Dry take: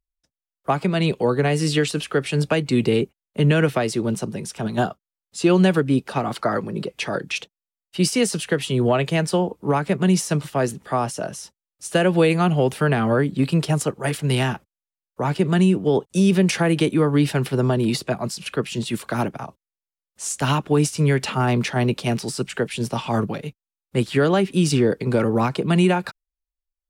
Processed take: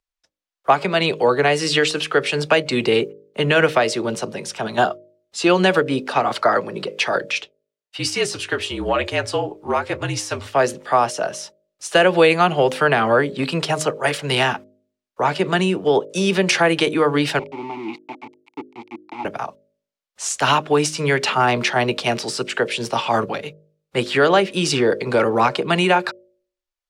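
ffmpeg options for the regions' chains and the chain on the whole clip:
ffmpeg -i in.wav -filter_complex "[0:a]asettb=1/sr,asplit=3[link_01][link_02][link_03];[link_01]atrim=end=7.314[link_04];[link_02]atrim=start=7.31:end=10.54,asetpts=PTS-STARTPTS,afade=type=in:duration=0.004:curve=qsin,afade=type=out:start_time=3.226:duration=0.004:curve=qsin,flanger=delay=5.8:depth=7.2:regen=-50:speed=1.1:shape=triangular,afreqshift=-52[link_05];[link_03]atrim=start=10.536[link_06];[link_04][link_05]acrossfade=duration=0.004:curve1=hsin:curve2=qsin[link_07];[link_07][link_06]acrossfade=duration=0.004:curve1=qsin:curve2=hsin,asettb=1/sr,asplit=3[link_08][link_09][link_10];[link_08]atrim=end=17.394[link_11];[link_09]atrim=start=17.39:end=19.25,asetpts=PTS-STARTPTS,afade=type=in:duration=0.004:curve=qsin,afade=type=out:start_time=1.856:duration=0.004:curve=qsin,lowshelf=frequency=450:gain=4,aeval=exprs='val(0)*gte(abs(val(0)),0.1)':channel_layout=same,asplit=3[link_12][link_13][link_14];[link_12]bandpass=frequency=300:width_type=q:width=8,volume=0dB[link_15];[link_13]bandpass=frequency=870:width_type=q:width=8,volume=-6dB[link_16];[link_14]bandpass=frequency=2240:width_type=q:width=8,volume=-9dB[link_17];[link_15][link_16][link_17]amix=inputs=3:normalize=0[link_18];[link_10]atrim=start=19.246[link_19];[link_11][link_18]acrossfade=duration=0.004:curve1=hsin:curve2=qsin[link_20];[link_20][link_19]acrossfade=duration=0.004:curve1=qsin:curve2=hsin,acrossover=split=420 6900:gain=0.2 1 0.251[link_21][link_22][link_23];[link_21][link_22][link_23]amix=inputs=3:normalize=0,bandreject=frequency=51.56:width_type=h:width=4,bandreject=frequency=103.12:width_type=h:width=4,bandreject=frequency=154.68:width_type=h:width=4,bandreject=frequency=206.24:width_type=h:width=4,bandreject=frequency=257.8:width_type=h:width=4,bandreject=frequency=309.36:width_type=h:width=4,bandreject=frequency=360.92:width_type=h:width=4,bandreject=frequency=412.48:width_type=h:width=4,bandreject=frequency=464.04:width_type=h:width=4,bandreject=frequency=515.6:width_type=h:width=4,bandreject=frequency=567.16:width_type=h:width=4,bandreject=frequency=618.72:width_type=h:width=4,volume=7.5dB" out.wav

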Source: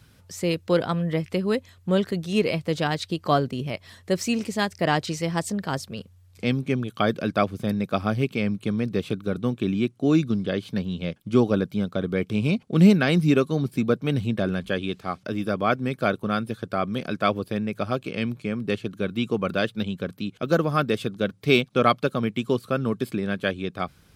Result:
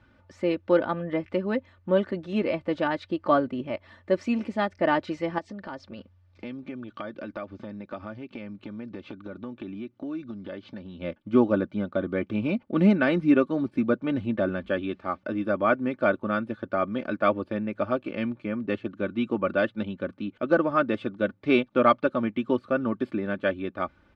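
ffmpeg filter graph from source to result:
ffmpeg -i in.wav -filter_complex "[0:a]asettb=1/sr,asplit=3[link_01][link_02][link_03];[link_01]atrim=end=5.384[link_04];[link_02]atrim=start=5.38:end=11.01,asetpts=PTS-STARTPTS,afade=type=in:duration=0.004:curve=qsin,afade=type=out:start_time=5.626:duration=0.004:curve=qsin,acompressor=threshold=-33dB:ratio=4:attack=3.2:release=140:knee=1:detection=peak,lowpass=frequency=5500:width_type=q:width=1.7[link_05];[link_03]atrim=start=11.006[link_06];[link_04][link_05]acrossfade=duration=0.004:curve1=hsin:curve2=qsin[link_07];[link_07][link_06]acrossfade=duration=0.004:curve1=qsin:curve2=hsin,lowpass=1800,lowshelf=frequency=220:gain=-6.5,aecho=1:1:3.4:0.65" out.wav

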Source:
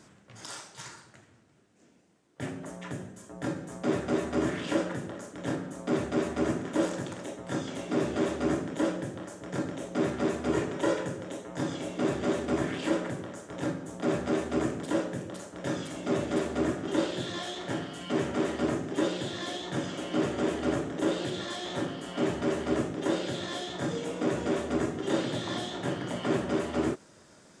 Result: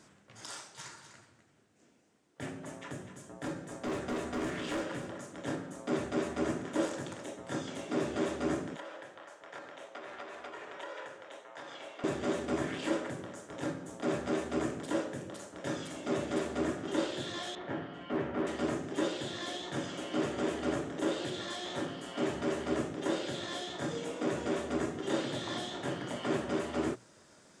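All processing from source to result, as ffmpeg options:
ffmpeg -i in.wav -filter_complex "[0:a]asettb=1/sr,asplit=3[link_01][link_02][link_03];[link_01]atrim=end=0.714[link_04];[link_02]atrim=start=0.71:end=5.4,asetpts=PTS-STARTPTS,afade=type=in:duration=0.004:curve=qsin,afade=type=out:start_time=4.686:duration=0.004:curve=qsin,asoftclip=type=hard:threshold=-27dB,aecho=1:1:250:0.299,atrim=end_sample=206829[link_05];[link_03]atrim=start=5.396[link_06];[link_04][link_05]acrossfade=duration=0.004:curve1=hsin:curve2=qsin[link_07];[link_07][link_06]acrossfade=duration=0.004:curve1=qsin:curve2=hsin,asettb=1/sr,asplit=3[link_08][link_09][link_10];[link_08]atrim=end=8.764[link_11];[link_09]atrim=start=8.76:end=12.04,asetpts=PTS-STARTPTS,afade=type=in:duration=0.004:curve=qsin,afade=type=out:start_time=3.276:duration=0.004:curve=qsin,acompressor=threshold=-29dB:ratio=10:attack=3.2:release=140:knee=1:detection=peak,acrossover=split=540 4200:gain=0.0794 1 0.224[link_12][link_13][link_14];[link_12][link_13][link_14]amix=inputs=3:normalize=0[link_15];[link_10]atrim=start=12.036[link_16];[link_11][link_15]acrossfade=duration=0.004:curve1=hsin:curve2=qsin[link_17];[link_17][link_16]acrossfade=duration=0.004:curve1=qsin:curve2=hsin,asettb=1/sr,asplit=3[link_18][link_19][link_20];[link_18]atrim=end=17.554[link_21];[link_19]atrim=start=17.55:end=18.47,asetpts=PTS-STARTPTS,afade=type=in:duration=0.004:curve=qsin,afade=type=out:start_time=0.916:duration=0.004:curve=qsin,lowpass=2100,asoftclip=type=hard:threshold=-21.5dB[link_22];[link_20]atrim=start=18.466[link_23];[link_21][link_22]acrossfade=duration=0.004:curve1=hsin:curve2=qsin[link_24];[link_24][link_23]acrossfade=duration=0.004:curve1=qsin:curve2=hsin,lowshelf=frequency=440:gain=-3,bandreject=frequency=60:width_type=h:width=6,bandreject=frequency=120:width_type=h:width=6,bandreject=frequency=180:width_type=h:width=6,volume=-2.5dB" out.wav

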